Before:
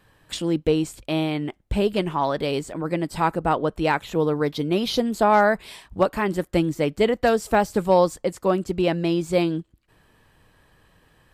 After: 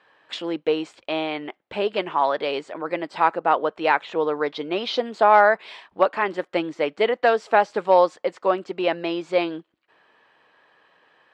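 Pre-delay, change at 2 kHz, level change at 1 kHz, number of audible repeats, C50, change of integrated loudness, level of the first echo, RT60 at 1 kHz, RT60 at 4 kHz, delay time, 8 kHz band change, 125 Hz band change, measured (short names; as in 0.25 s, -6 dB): none, +3.0 dB, +3.0 dB, none, none, +0.5 dB, none, none, none, none, under -10 dB, -16.0 dB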